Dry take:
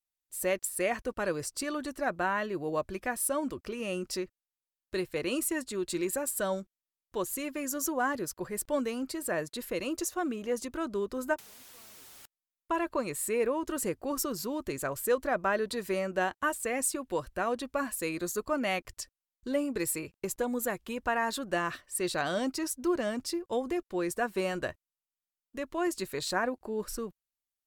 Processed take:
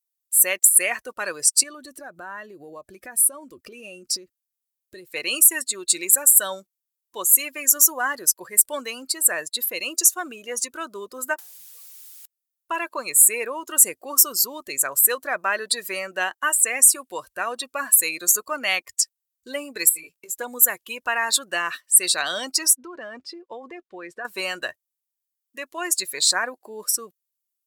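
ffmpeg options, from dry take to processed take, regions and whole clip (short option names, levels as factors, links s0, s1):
-filter_complex "[0:a]asettb=1/sr,asplit=3[s0][s1][s2];[s0]atrim=end=1.634[s3];[s1]atrim=start=1.63:end=5.07,asetpts=PTS-STARTPTS,afade=t=in:d=0.004:c=qsin,afade=t=out:st=3.436:d=0.004:c=qsin,lowshelf=f=460:g=10,acompressor=threshold=0.0178:ratio=10:attack=3.2:release=140:knee=1:detection=peak[s4];[s2]atrim=start=5.066[s5];[s3][s4]acrossfade=d=0.004:c1=hsin:c2=qsin[s6];[s6][s5]acrossfade=d=0.004:c1=qsin:c2=hsin,asettb=1/sr,asplit=3[s7][s8][s9];[s7]atrim=end=19.894[s10];[s8]atrim=start=19.89:end=20.4,asetpts=PTS-STARTPTS,afade=t=in:d=0.004:c=qsin,afade=t=out:st=0.506:d=0.004:c=qsin,asplit=2[s11][s12];[s12]adelay=18,volume=0.794[s13];[s11][s13]amix=inputs=2:normalize=0,atrim=end_sample=22491,acompressor=threshold=0.01:ratio=8:attack=3.2:release=140:knee=1:detection=peak[s14];[s9]atrim=start=20.396[s15];[s10][s14]acrossfade=d=0.004:c1=hsin:c2=qsin[s16];[s16][s15]acrossfade=d=0.004:c1=qsin:c2=hsin,asettb=1/sr,asplit=3[s17][s18][s19];[s17]atrim=end=22.754[s20];[s18]atrim=start=22.75:end=24.25,asetpts=PTS-STARTPTS,afade=t=in:d=0.004:c=qsin,afade=t=out:st=1.496:d=0.004:c=qsin,lowpass=2600,acompressor=threshold=0.0282:ratio=12:attack=3.2:release=140:knee=1:detection=peak[s21];[s19]atrim=start=24.246[s22];[s20][s21]acrossfade=d=0.004:c1=hsin:c2=qsin[s23];[s23][s22]acrossfade=d=0.004:c1=qsin:c2=hsin,afftdn=nr=16:nf=-43,aderivative,alimiter=level_in=13.3:limit=0.891:release=50:level=0:latency=1,volume=0.891"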